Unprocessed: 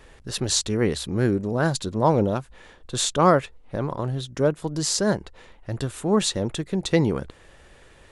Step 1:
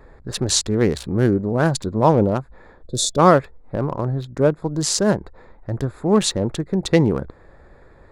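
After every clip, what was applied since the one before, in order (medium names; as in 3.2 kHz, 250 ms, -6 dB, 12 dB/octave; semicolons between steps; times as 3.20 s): local Wiener filter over 15 samples; time-frequency box 2.87–3.17 s, 670–3400 Hz -19 dB; trim +4.5 dB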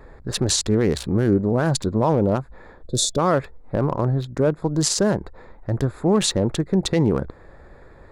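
peak limiter -11.5 dBFS, peak gain reduction 10 dB; trim +2 dB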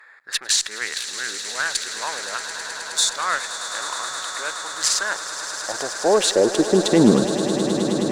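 high-pass sweep 1.7 kHz -> 130 Hz, 4.91–7.68 s; Chebyshev shaper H 3 -20 dB, 5 -26 dB, 8 -38 dB, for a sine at -5 dBFS; echo with a slow build-up 105 ms, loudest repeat 8, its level -14 dB; trim +2.5 dB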